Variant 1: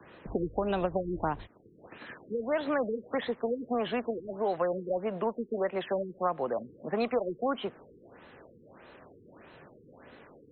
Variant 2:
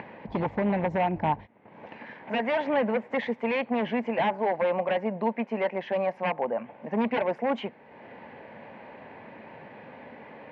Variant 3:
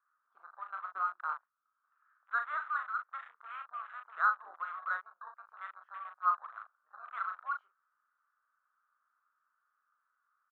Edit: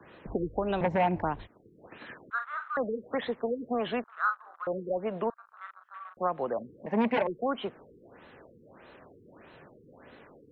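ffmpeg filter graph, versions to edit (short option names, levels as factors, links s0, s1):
-filter_complex "[1:a]asplit=2[s0][s1];[2:a]asplit=3[s2][s3][s4];[0:a]asplit=6[s5][s6][s7][s8][s9][s10];[s5]atrim=end=0.812[s11];[s0]atrim=start=0.808:end=1.222[s12];[s6]atrim=start=1.218:end=2.302[s13];[s2]atrim=start=2.298:end=2.772[s14];[s7]atrim=start=2.768:end=4.042[s15];[s3]atrim=start=4.038:end=4.672[s16];[s8]atrim=start=4.668:end=5.302[s17];[s4]atrim=start=5.298:end=6.172[s18];[s9]atrim=start=6.168:end=6.862[s19];[s1]atrim=start=6.858:end=7.272[s20];[s10]atrim=start=7.268[s21];[s11][s12]acrossfade=d=0.004:c1=hsin:c2=hsin[s22];[s22][s13]acrossfade=d=0.004:c1=hsin:c2=hsin[s23];[s23][s14]acrossfade=d=0.004:c1=hsin:c2=hsin[s24];[s24][s15]acrossfade=d=0.004:c1=hsin:c2=hsin[s25];[s25][s16]acrossfade=d=0.004:c1=hsin:c2=hsin[s26];[s26][s17]acrossfade=d=0.004:c1=hsin:c2=hsin[s27];[s27][s18]acrossfade=d=0.004:c1=hsin:c2=hsin[s28];[s28][s19]acrossfade=d=0.004:c1=hsin:c2=hsin[s29];[s29][s20]acrossfade=d=0.004:c1=hsin:c2=hsin[s30];[s30][s21]acrossfade=d=0.004:c1=hsin:c2=hsin"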